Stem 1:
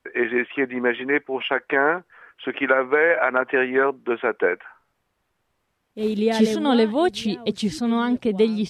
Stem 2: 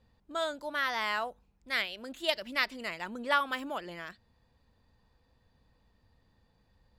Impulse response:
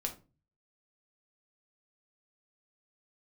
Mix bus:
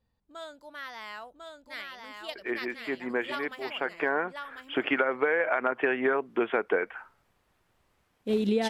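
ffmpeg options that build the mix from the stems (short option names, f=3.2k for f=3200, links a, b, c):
-filter_complex "[0:a]adelay=2300,volume=1.5dB[a];[1:a]volume=-9.5dB,asplit=3[b][c][d];[c]volume=-3.5dB[e];[d]apad=whole_len=485085[f];[a][f]sidechaincompress=threshold=-44dB:ratio=12:attack=11:release=1270[g];[e]aecho=0:1:1048:1[h];[g][b][h]amix=inputs=3:normalize=0,acompressor=threshold=-23dB:ratio=5"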